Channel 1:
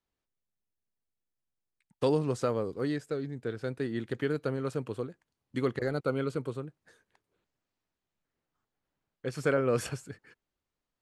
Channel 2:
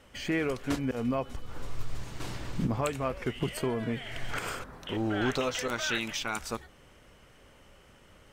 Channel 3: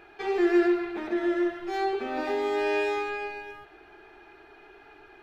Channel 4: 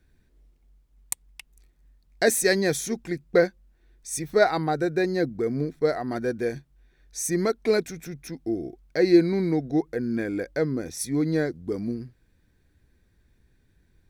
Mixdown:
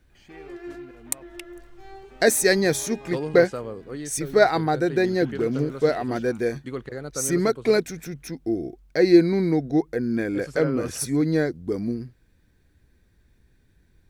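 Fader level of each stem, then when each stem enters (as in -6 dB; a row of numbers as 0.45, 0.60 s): -3.0, -18.0, -16.5, +2.5 dB; 1.10, 0.00, 0.10, 0.00 s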